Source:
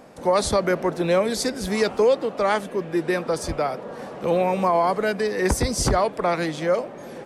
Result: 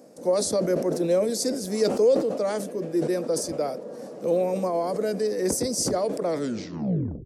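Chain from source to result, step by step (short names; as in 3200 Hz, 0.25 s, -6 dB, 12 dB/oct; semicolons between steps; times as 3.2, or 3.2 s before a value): tape stop at the end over 0.99 s; HPF 230 Hz 12 dB/oct; band shelf 1700 Hz -14 dB 2.6 oct; notch 390 Hz, Q 12; sustainer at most 74 dB/s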